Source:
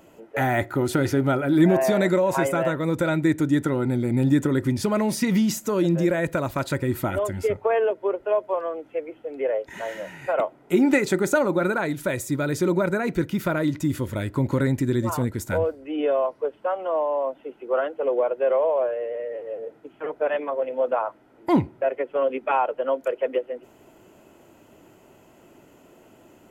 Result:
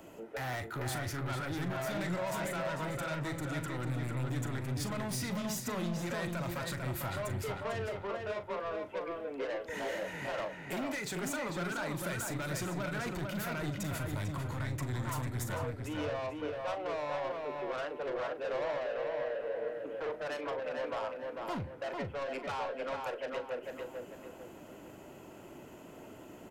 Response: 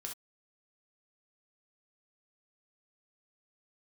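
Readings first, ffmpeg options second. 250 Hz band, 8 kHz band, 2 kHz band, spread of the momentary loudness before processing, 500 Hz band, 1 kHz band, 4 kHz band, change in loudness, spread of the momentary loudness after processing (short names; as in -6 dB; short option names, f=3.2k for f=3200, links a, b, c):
-16.5 dB, -6.5 dB, -9.0 dB, 10 LU, -14.0 dB, -11.0 dB, -5.0 dB, -13.0 dB, 7 LU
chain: -filter_complex "[0:a]acrossover=split=180|700|2300[a][b][c][d];[b]acompressor=threshold=-37dB:ratio=6[e];[a][e][c][d]amix=inputs=4:normalize=0,alimiter=limit=-22dB:level=0:latency=1:release=291,asoftclip=type=tanh:threshold=-35dB,asplit=2[f][g];[g]adelay=40,volume=-12dB[h];[f][h]amix=inputs=2:normalize=0,asplit=2[i][j];[j]adelay=447,lowpass=f=3.1k:p=1,volume=-3dB,asplit=2[k][l];[l]adelay=447,lowpass=f=3.1k:p=1,volume=0.37,asplit=2[m][n];[n]adelay=447,lowpass=f=3.1k:p=1,volume=0.37,asplit=2[o][p];[p]adelay=447,lowpass=f=3.1k:p=1,volume=0.37,asplit=2[q][r];[r]adelay=447,lowpass=f=3.1k:p=1,volume=0.37[s];[i][k][m][o][q][s]amix=inputs=6:normalize=0"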